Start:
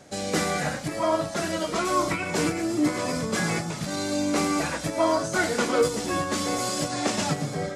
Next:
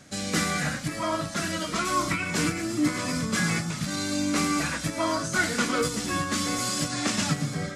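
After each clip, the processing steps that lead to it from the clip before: band shelf 570 Hz -8.5 dB; gain +1.5 dB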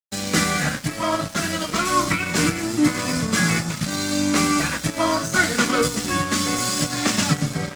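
crossover distortion -38.5 dBFS; gain +7.5 dB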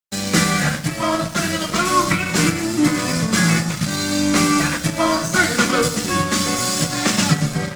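shoebox room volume 2400 m³, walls furnished, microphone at 0.87 m; gain +2.5 dB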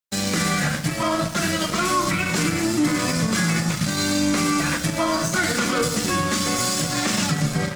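limiter -11.5 dBFS, peak gain reduction 10 dB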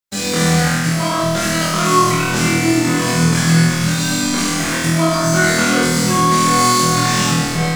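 flutter echo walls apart 4.2 m, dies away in 1.2 s

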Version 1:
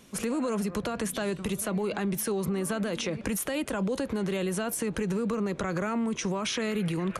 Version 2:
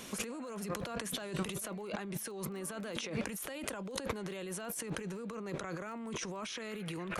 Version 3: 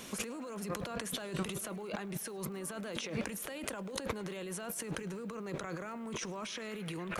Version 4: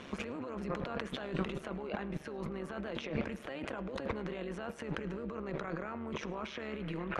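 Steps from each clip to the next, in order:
low shelf 270 Hz -9 dB; negative-ratio compressor -42 dBFS, ratio -1; crackle 20/s -50 dBFS; gain +1.5 dB
requantised 12-bit, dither none; tape echo 0.106 s, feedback 79%, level -21 dB, low-pass 4300 Hz
LPF 2700 Hz 12 dB/oct; AM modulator 140 Hz, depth 55%; reverb RT60 0.85 s, pre-delay 42 ms, DRR 15.5 dB; gain +4.5 dB

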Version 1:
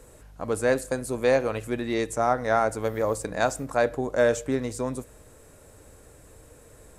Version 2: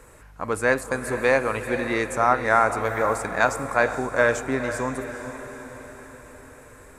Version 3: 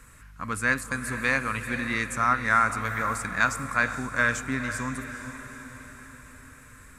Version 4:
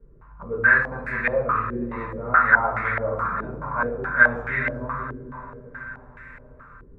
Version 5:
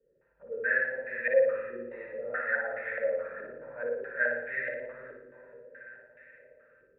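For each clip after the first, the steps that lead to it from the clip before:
band shelf 1500 Hz +8 dB; diffused feedback echo 0.461 s, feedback 55%, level -10 dB
band shelf 540 Hz -14 dB
reverb RT60 0.70 s, pre-delay 5 ms, DRR -10.5 dB; stepped low-pass 4.7 Hz 380–2000 Hz; gain -11 dB
vowel filter e; on a send: flutter echo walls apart 10 m, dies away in 0.68 s

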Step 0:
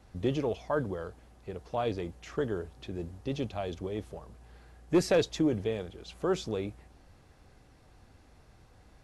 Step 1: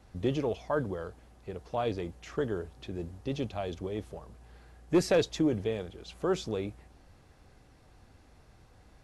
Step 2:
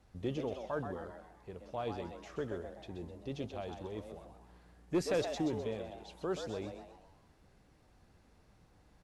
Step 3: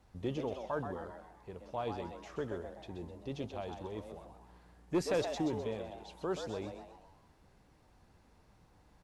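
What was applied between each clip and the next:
nothing audible
frequency-shifting echo 0.128 s, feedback 44%, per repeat +120 Hz, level -8 dB; gain -7.5 dB
bell 940 Hz +4.5 dB 0.42 oct

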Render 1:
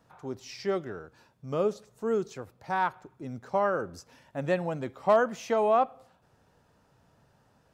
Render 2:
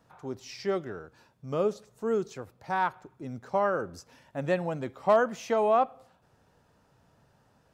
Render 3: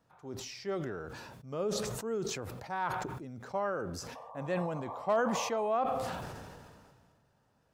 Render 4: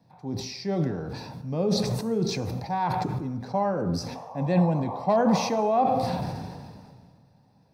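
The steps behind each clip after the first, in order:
nothing audible
painted sound noise, 4.15–5.68, 450–1200 Hz -42 dBFS; sustainer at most 29 dB/s; gain -7.5 dB
reverb RT60 1.0 s, pre-delay 3 ms, DRR 9 dB

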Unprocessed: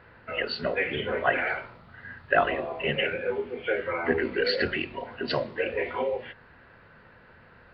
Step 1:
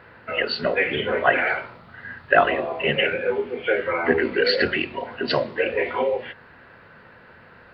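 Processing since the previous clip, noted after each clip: low shelf 74 Hz -11 dB; gain +6 dB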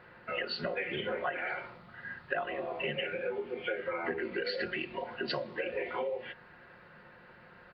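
comb 5.6 ms, depth 45%; compressor 6:1, threshold -24 dBFS, peak gain reduction 13.5 dB; gain -7.5 dB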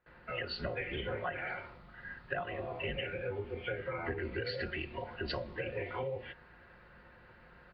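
octaver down 2 oct, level +2 dB; gate with hold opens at -46 dBFS; gain -3.5 dB

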